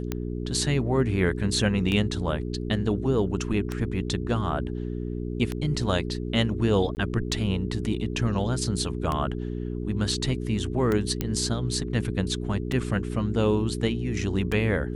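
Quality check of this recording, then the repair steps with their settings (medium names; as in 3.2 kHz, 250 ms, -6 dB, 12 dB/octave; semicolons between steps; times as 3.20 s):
hum 60 Hz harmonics 7 -31 dBFS
tick 33 1/3 rpm -14 dBFS
6.95–6.97 s: dropout 19 ms
11.21 s: pop -12 dBFS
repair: de-click; de-hum 60 Hz, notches 7; interpolate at 6.95 s, 19 ms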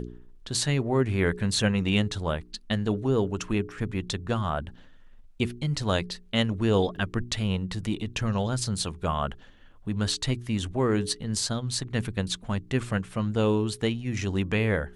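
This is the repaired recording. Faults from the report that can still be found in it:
nothing left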